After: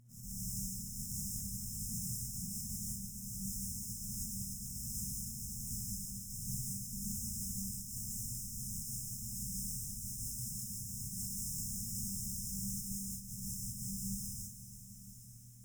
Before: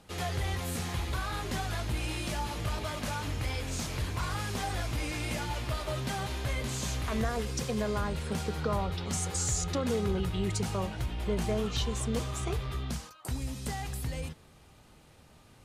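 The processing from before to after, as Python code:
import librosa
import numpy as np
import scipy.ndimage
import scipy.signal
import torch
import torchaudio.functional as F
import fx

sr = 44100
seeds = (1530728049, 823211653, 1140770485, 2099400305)

p1 = fx.tone_stack(x, sr, knobs='10-0-10')
p2 = fx.spec_gate(p1, sr, threshold_db=-25, keep='weak')
p3 = fx.high_shelf(p2, sr, hz=3700.0, db=-7.0)
p4 = fx.sample_hold(p3, sr, seeds[0], rate_hz=5700.0, jitter_pct=20)
p5 = fx.fold_sine(p4, sr, drive_db=10, ceiling_db=-39.0)
p6 = fx.dmg_buzz(p5, sr, base_hz=120.0, harmonics=16, level_db=-64.0, tilt_db=-3, odd_only=False)
p7 = fx.brickwall_bandstop(p6, sr, low_hz=230.0, high_hz=5100.0)
p8 = p7 + fx.echo_diffused(p7, sr, ms=955, feedback_pct=44, wet_db=-14.0, dry=0)
p9 = fx.rev_gated(p8, sr, seeds[1], gate_ms=220, shape='rising', drr_db=-5.0)
p10 = fx.echo_crushed(p9, sr, ms=339, feedback_pct=35, bits=12, wet_db=-12.5)
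y = p10 * 10.0 ** (6.0 / 20.0)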